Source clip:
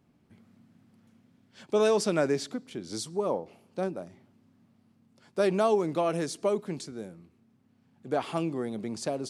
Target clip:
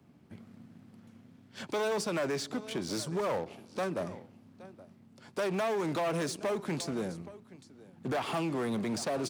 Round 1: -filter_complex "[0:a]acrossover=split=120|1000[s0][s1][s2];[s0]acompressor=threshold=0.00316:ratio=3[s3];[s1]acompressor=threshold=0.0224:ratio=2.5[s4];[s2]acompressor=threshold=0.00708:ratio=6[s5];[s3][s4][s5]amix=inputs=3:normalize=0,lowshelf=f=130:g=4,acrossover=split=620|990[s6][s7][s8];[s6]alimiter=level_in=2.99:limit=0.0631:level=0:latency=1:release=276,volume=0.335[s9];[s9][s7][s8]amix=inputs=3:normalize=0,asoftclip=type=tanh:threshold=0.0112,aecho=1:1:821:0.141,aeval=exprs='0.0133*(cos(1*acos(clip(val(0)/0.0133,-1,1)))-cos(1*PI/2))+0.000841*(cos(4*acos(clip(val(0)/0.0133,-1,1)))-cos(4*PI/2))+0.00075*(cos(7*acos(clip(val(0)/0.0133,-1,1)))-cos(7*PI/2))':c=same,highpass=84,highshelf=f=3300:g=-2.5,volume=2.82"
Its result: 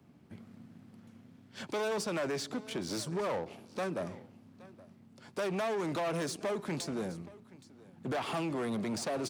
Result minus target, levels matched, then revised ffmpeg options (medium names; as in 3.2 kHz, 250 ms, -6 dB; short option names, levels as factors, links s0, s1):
saturation: distortion +8 dB
-filter_complex "[0:a]acrossover=split=120|1000[s0][s1][s2];[s0]acompressor=threshold=0.00316:ratio=3[s3];[s1]acompressor=threshold=0.0224:ratio=2.5[s4];[s2]acompressor=threshold=0.00708:ratio=6[s5];[s3][s4][s5]amix=inputs=3:normalize=0,lowshelf=f=130:g=4,acrossover=split=620|990[s6][s7][s8];[s6]alimiter=level_in=2.99:limit=0.0631:level=0:latency=1:release=276,volume=0.335[s9];[s9][s7][s8]amix=inputs=3:normalize=0,asoftclip=type=tanh:threshold=0.0266,aecho=1:1:821:0.141,aeval=exprs='0.0133*(cos(1*acos(clip(val(0)/0.0133,-1,1)))-cos(1*PI/2))+0.000841*(cos(4*acos(clip(val(0)/0.0133,-1,1)))-cos(4*PI/2))+0.00075*(cos(7*acos(clip(val(0)/0.0133,-1,1)))-cos(7*PI/2))':c=same,highpass=84,highshelf=f=3300:g=-2.5,volume=2.82"